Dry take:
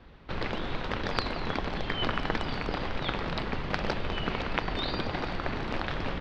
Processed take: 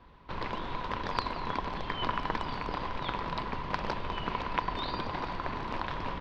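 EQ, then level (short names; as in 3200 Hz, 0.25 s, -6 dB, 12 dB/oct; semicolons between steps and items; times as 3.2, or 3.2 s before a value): bell 1000 Hz +14.5 dB 0.24 oct; -5.0 dB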